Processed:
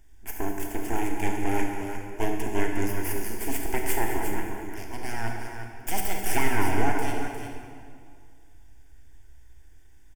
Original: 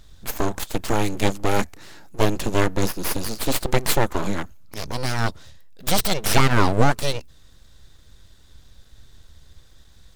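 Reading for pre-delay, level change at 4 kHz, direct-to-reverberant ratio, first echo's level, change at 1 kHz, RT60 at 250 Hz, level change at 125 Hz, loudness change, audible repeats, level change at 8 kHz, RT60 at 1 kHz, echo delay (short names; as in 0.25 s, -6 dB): 25 ms, -13.5 dB, 0.5 dB, -12.5 dB, -5.5 dB, 2.4 s, -10.0 dB, -7.0 dB, 2, -6.5 dB, 2.1 s, 0.205 s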